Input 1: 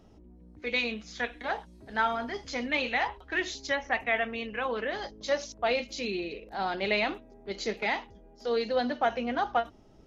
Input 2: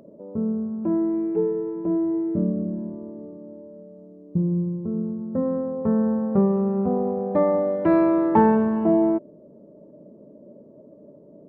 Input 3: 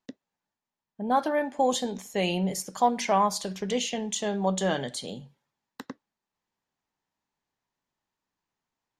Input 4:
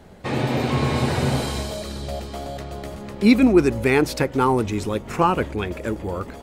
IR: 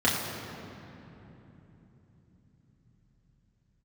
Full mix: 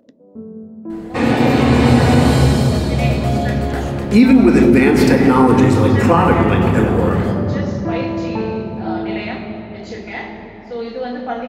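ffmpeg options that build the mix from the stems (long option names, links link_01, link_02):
-filter_complex "[0:a]adelay=2250,volume=-10.5dB,asplit=2[link_01][link_02];[link_02]volume=-3.5dB[link_03];[1:a]volume=-10dB,asplit=2[link_04][link_05];[link_05]volume=-13.5dB[link_06];[2:a]acompressor=threshold=-31dB:ratio=6,volume=-6dB,asplit=2[link_07][link_08];[3:a]adelay=900,volume=2dB,asplit=2[link_09][link_10];[link_10]volume=-10dB[link_11];[link_08]apad=whole_len=506285[link_12];[link_04][link_12]sidechaincompress=threshold=-55dB:ratio=8:attack=16:release=255[link_13];[4:a]atrim=start_sample=2205[link_14];[link_03][link_06][link_11]amix=inputs=3:normalize=0[link_15];[link_15][link_14]afir=irnorm=-1:irlink=0[link_16];[link_01][link_13][link_07][link_09][link_16]amix=inputs=5:normalize=0,alimiter=limit=-1.5dB:level=0:latency=1:release=139"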